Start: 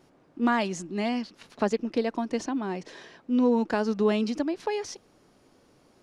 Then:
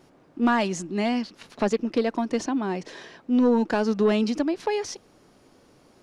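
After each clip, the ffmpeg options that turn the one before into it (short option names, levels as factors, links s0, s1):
-af "asoftclip=type=tanh:threshold=0.178,volume=1.58"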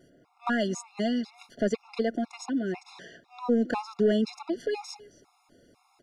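-af "aecho=1:1:265:0.075,afftfilt=real='re*gt(sin(2*PI*2*pts/sr)*(1-2*mod(floor(b*sr/1024/700),2)),0)':imag='im*gt(sin(2*PI*2*pts/sr)*(1-2*mod(floor(b*sr/1024/700),2)),0)':win_size=1024:overlap=0.75,volume=0.794"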